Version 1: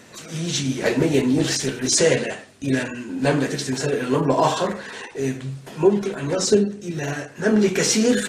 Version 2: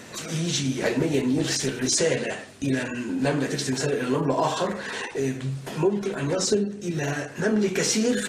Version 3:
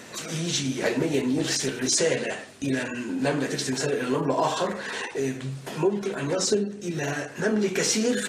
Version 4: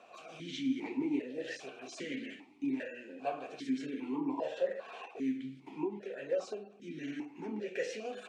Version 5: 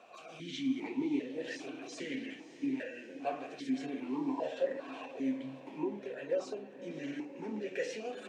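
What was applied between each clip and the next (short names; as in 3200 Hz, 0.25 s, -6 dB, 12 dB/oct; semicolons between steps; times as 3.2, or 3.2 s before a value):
compressor 2:1, threshold -31 dBFS, peak gain reduction 11.5 dB; gain +4 dB
low shelf 130 Hz -8 dB
vowel sequencer 2.5 Hz; gain -1 dB
diffused feedback echo 0.595 s, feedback 58%, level -14 dB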